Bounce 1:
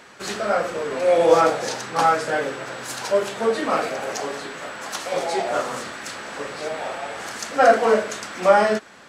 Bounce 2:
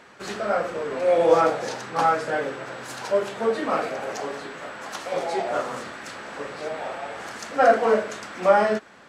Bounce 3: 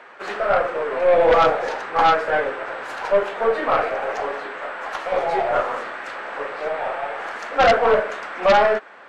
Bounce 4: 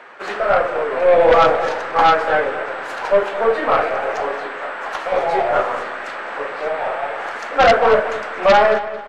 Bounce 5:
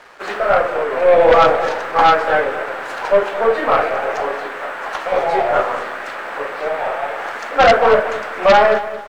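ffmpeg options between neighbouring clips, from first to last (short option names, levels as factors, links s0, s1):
-af "highshelf=f=3600:g=-7.5,volume=0.794"
-filter_complex "[0:a]acrossover=split=390 2900:gain=0.112 1 0.141[s0][s1][s2];[s0][s1][s2]amix=inputs=3:normalize=0,aeval=exprs='0.531*(cos(1*acos(clip(val(0)/0.531,-1,1)))-cos(1*PI/2))+0.188*(cos(5*acos(clip(val(0)/0.531,-1,1)))-cos(5*PI/2))+0.0841*(cos(6*acos(clip(val(0)/0.531,-1,1)))-cos(6*PI/2))+0.106*(cos(8*acos(clip(val(0)/0.531,-1,1)))-cos(8*PI/2))':c=same,volume=0.841"
-filter_complex "[0:a]asplit=2[s0][s1];[s1]adelay=222,lowpass=f=4700:p=1,volume=0.224,asplit=2[s2][s3];[s3]adelay=222,lowpass=f=4700:p=1,volume=0.33,asplit=2[s4][s5];[s5]adelay=222,lowpass=f=4700:p=1,volume=0.33[s6];[s0][s2][s4][s6]amix=inputs=4:normalize=0,volume=1.41"
-af "aeval=exprs='sgn(val(0))*max(abs(val(0))-0.00422,0)':c=same,volume=1.19"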